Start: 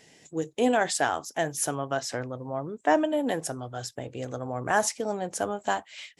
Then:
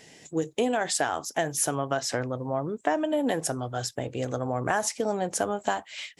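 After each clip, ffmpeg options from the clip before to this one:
ffmpeg -i in.wav -af "acompressor=threshold=-26dB:ratio=10,volume=4.5dB" out.wav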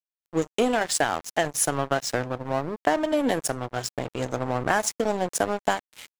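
ffmpeg -i in.wav -af "aeval=exprs='sgn(val(0))*max(abs(val(0))-0.0178,0)':channel_layout=same,volume=5dB" out.wav

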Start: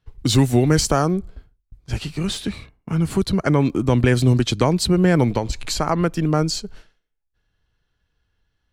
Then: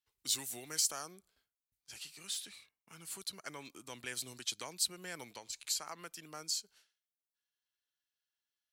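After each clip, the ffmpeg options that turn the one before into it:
ffmpeg -i in.wav -af "aderivative,volume=-7dB" out.wav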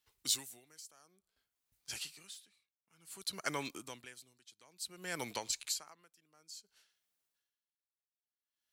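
ffmpeg -i in.wav -af "aeval=exprs='val(0)*pow(10,-31*(0.5-0.5*cos(2*PI*0.56*n/s))/20)':channel_layout=same,volume=9.5dB" out.wav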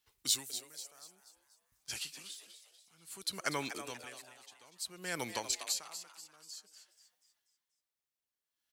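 ffmpeg -i in.wav -filter_complex "[0:a]asplit=6[link_01][link_02][link_03][link_04][link_05][link_06];[link_02]adelay=242,afreqshift=150,volume=-10.5dB[link_07];[link_03]adelay=484,afreqshift=300,volume=-17.4dB[link_08];[link_04]adelay=726,afreqshift=450,volume=-24.4dB[link_09];[link_05]adelay=968,afreqshift=600,volume=-31.3dB[link_10];[link_06]adelay=1210,afreqshift=750,volume=-38.2dB[link_11];[link_01][link_07][link_08][link_09][link_10][link_11]amix=inputs=6:normalize=0,volume=2dB" out.wav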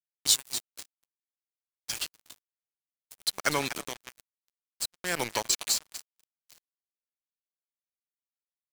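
ffmpeg -i in.wav -af "acrusher=bits=5:mix=0:aa=0.5,volume=8dB" out.wav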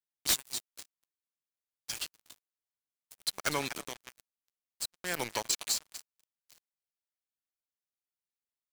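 ffmpeg -i in.wav -af "aeval=exprs='(mod(5.01*val(0)+1,2)-1)/5.01':channel_layout=same,volume=-4dB" out.wav

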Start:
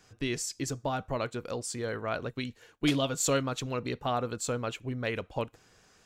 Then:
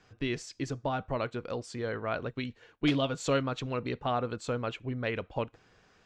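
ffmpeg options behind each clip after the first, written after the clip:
ffmpeg -i in.wav -af "lowpass=3800" out.wav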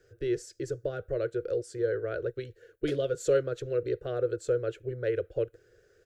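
ffmpeg -i in.wav -af "firequalizer=gain_entry='entry(110,0);entry(240,-22);entry(350,7);entry(510,8);entry(890,-28);entry(1500,0);entry(2300,-12);entry(11000,9)':delay=0.05:min_phase=1" out.wav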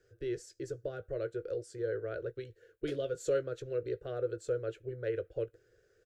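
ffmpeg -i in.wav -filter_complex "[0:a]asplit=2[link_01][link_02];[link_02]adelay=18,volume=-13.5dB[link_03];[link_01][link_03]amix=inputs=2:normalize=0,volume=-6dB" out.wav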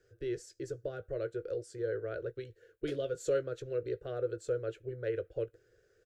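ffmpeg -i in.wav -af anull out.wav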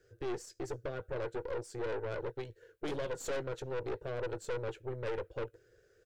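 ffmpeg -i in.wav -af "aeval=exprs='(tanh(89.1*val(0)+0.65)-tanh(0.65))/89.1':channel_layout=same,volume=5.5dB" out.wav

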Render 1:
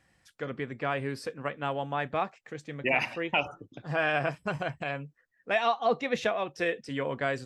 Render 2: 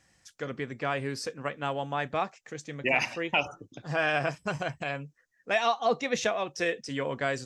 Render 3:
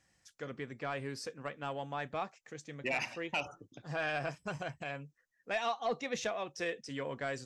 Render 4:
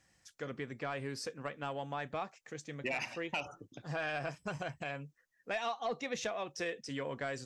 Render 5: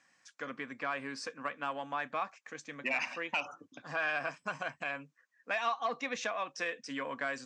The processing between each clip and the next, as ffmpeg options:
ffmpeg -i in.wav -af "equalizer=frequency=6300:width_type=o:width=0.86:gain=11.5" out.wav
ffmpeg -i in.wav -af "asoftclip=type=tanh:threshold=-17dB,volume=-7dB" out.wav
ffmpeg -i in.wav -af "acompressor=threshold=-38dB:ratio=2,volume=2dB" out.wav
ffmpeg -i in.wav -af "highpass=260,equalizer=frequency=260:width_type=q:width=4:gain=6,equalizer=frequency=380:width_type=q:width=4:gain=-9,equalizer=frequency=1100:width_type=q:width=4:gain=9,equalizer=frequency=1600:width_type=q:width=4:gain=6,equalizer=frequency=2400:width_type=q:width=4:gain=5,lowpass=frequency=8200:width=0.5412,lowpass=frequency=8200:width=1.3066" out.wav

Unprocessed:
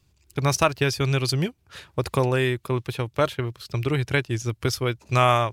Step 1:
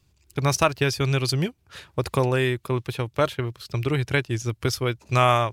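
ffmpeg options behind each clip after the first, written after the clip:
ffmpeg -i in.wav -af anull out.wav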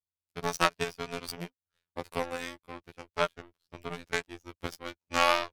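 ffmpeg -i in.wav -af "aeval=exprs='0.596*(cos(1*acos(clip(val(0)/0.596,-1,1)))-cos(1*PI/2))+0.0335*(cos(2*acos(clip(val(0)/0.596,-1,1)))-cos(2*PI/2))+0.119*(cos(3*acos(clip(val(0)/0.596,-1,1)))-cos(3*PI/2))+0.0335*(cos(7*acos(clip(val(0)/0.596,-1,1)))-cos(7*PI/2))':channel_layout=same,afftfilt=real='hypot(re,im)*cos(PI*b)':imag='0':win_size=2048:overlap=0.75,volume=3.5dB" out.wav

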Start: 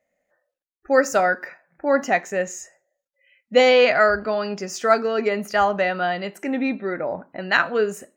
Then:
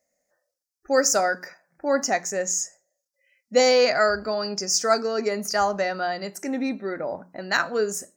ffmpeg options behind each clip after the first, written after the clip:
ffmpeg -i in.wav -af "highshelf=frequency=4100:width_type=q:width=3:gain=9,bandreject=frequency=60:width_type=h:width=6,bandreject=frequency=120:width_type=h:width=6,bandreject=frequency=180:width_type=h:width=6,volume=-3dB" out.wav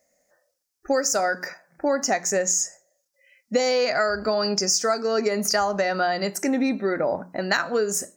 ffmpeg -i in.wav -af "acompressor=threshold=-26dB:ratio=12,volume=7.5dB" out.wav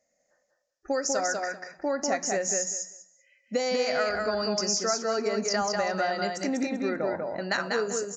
ffmpeg -i in.wav -filter_complex "[0:a]asplit=2[link_01][link_02];[link_02]aecho=0:1:194|388|582:0.668|0.114|0.0193[link_03];[link_01][link_03]amix=inputs=2:normalize=0,aresample=16000,aresample=44100,volume=-6dB" out.wav

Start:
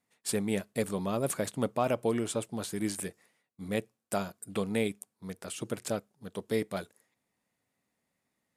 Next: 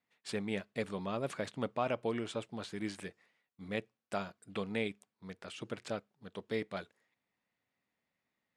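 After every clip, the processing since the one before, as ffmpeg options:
ffmpeg -i in.wav -af "lowpass=3400,tiltshelf=frequency=1200:gain=-4,volume=-3dB" out.wav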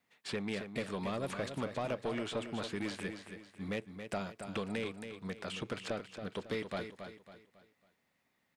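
ffmpeg -i in.wav -filter_complex "[0:a]acrossover=split=650|3800[link_01][link_02][link_03];[link_01]acompressor=threshold=-42dB:ratio=4[link_04];[link_02]acompressor=threshold=-46dB:ratio=4[link_05];[link_03]acompressor=threshold=-58dB:ratio=4[link_06];[link_04][link_05][link_06]amix=inputs=3:normalize=0,asoftclip=type=tanh:threshold=-35dB,asplit=2[link_07][link_08];[link_08]aecho=0:1:275|550|825|1100:0.376|0.143|0.0543|0.0206[link_09];[link_07][link_09]amix=inputs=2:normalize=0,volume=7dB" out.wav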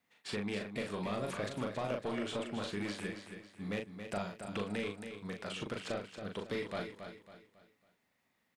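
ffmpeg -i in.wav -filter_complex "[0:a]asplit=2[link_01][link_02];[link_02]adelay=39,volume=-4dB[link_03];[link_01][link_03]amix=inputs=2:normalize=0,volume=-1.5dB" out.wav

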